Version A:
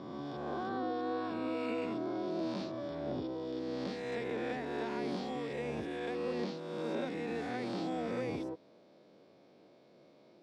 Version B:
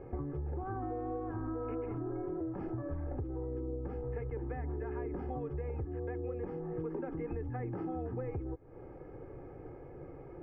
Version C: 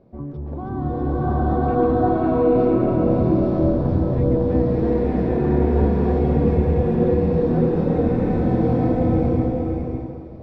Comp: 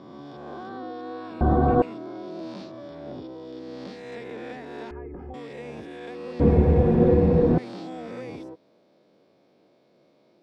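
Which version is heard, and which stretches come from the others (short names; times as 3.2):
A
1.41–1.82 from C
4.91–5.34 from B
6.4–7.58 from C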